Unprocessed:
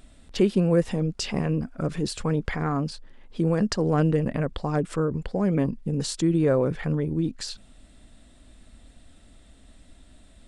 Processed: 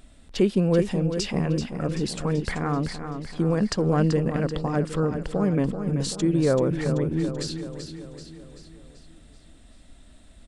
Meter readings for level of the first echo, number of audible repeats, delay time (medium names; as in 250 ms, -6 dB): -8.5 dB, 5, 384 ms